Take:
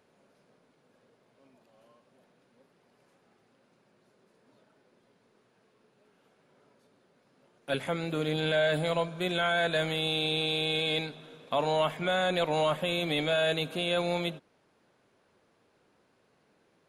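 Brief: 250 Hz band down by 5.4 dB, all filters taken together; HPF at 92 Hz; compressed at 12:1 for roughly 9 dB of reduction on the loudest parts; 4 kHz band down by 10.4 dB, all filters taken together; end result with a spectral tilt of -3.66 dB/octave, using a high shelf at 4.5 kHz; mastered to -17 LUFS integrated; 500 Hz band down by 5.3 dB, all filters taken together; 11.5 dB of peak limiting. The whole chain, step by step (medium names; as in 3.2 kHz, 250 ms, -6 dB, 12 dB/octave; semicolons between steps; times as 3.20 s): high-pass 92 Hz; peaking EQ 250 Hz -7 dB; peaking EQ 500 Hz -5 dB; peaking EQ 4 kHz -8.5 dB; treble shelf 4.5 kHz -9 dB; compression 12:1, threshold -36 dBFS; trim +28 dB; peak limiter -7 dBFS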